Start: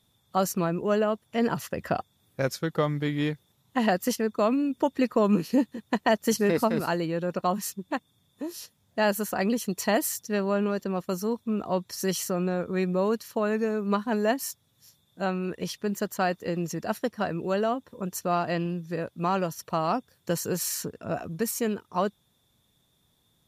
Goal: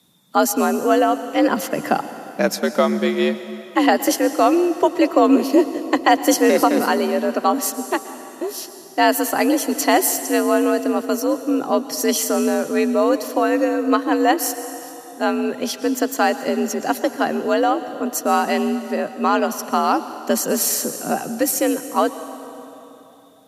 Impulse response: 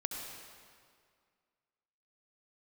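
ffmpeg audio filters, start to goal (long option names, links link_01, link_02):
-filter_complex "[0:a]afreqshift=65,asplit=2[link_01][link_02];[1:a]atrim=start_sample=2205,asetrate=26019,aresample=44100,highshelf=frequency=4400:gain=9.5[link_03];[link_02][link_03]afir=irnorm=-1:irlink=0,volume=-13.5dB[link_04];[link_01][link_04]amix=inputs=2:normalize=0,volume=6.5dB"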